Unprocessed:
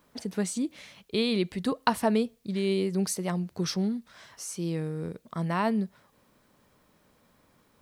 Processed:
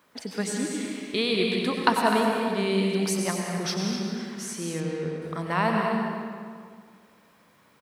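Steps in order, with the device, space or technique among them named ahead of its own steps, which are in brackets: stadium PA (HPF 200 Hz 6 dB/oct; bell 1900 Hz +5.5 dB 2.1 oct; loudspeakers at several distances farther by 67 m -9 dB, 87 m -10 dB; reverb RT60 2.0 s, pre-delay 86 ms, DRR 1.5 dB); 4.8–5.22 bell 12000 Hz -13.5 dB 1.1 oct

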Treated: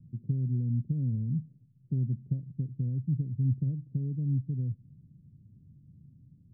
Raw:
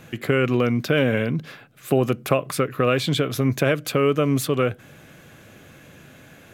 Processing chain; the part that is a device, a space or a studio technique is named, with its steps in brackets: the neighbour's flat through the wall (LPF 190 Hz 24 dB/oct; bell 120 Hz +3 dB); gain -5 dB

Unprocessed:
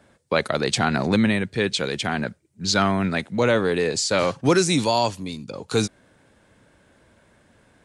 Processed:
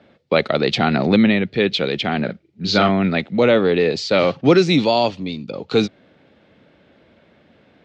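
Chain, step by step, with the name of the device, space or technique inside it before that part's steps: 2.25–2.89 doubler 39 ms -5 dB; guitar cabinet (speaker cabinet 100–4100 Hz, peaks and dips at 110 Hz -7 dB, 1000 Hz -8 dB, 1600 Hz -7 dB); gain +6 dB

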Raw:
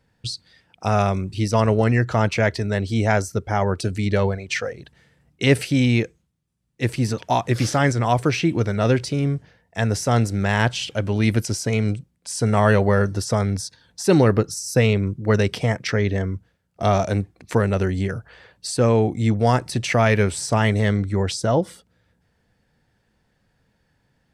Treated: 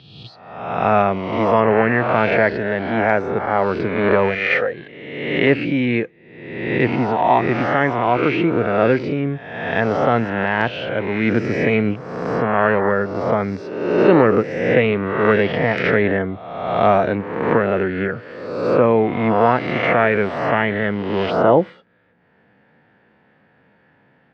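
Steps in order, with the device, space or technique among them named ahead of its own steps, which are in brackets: spectral swells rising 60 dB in 1.13 s; HPF 200 Hz 12 dB/oct; action camera in a waterproof case (LPF 2600 Hz 24 dB/oct; AGC gain up to 12 dB; gain -1 dB; AAC 48 kbps 22050 Hz)

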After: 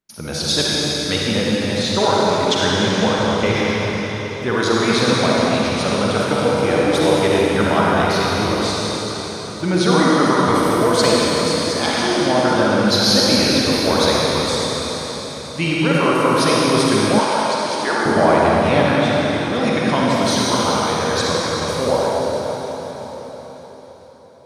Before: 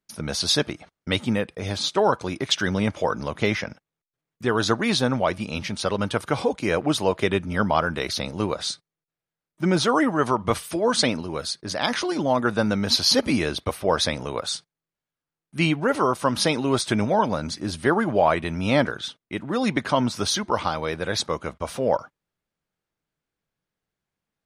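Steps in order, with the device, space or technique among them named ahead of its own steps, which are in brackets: cathedral (reverb RT60 4.9 s, pre-delay 41 ms, DRR -6.5 dB); 17.19–18.06 weighting filter A

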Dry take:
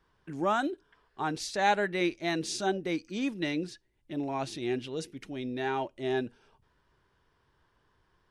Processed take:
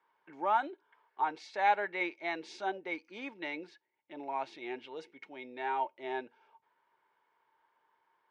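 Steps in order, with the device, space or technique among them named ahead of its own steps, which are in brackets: tin-can telephone (BPF 500–2700 Hz; small resonant body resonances 900/2200 Hz, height 14 dB, ringing for 55 ms); gain -3.5 dB

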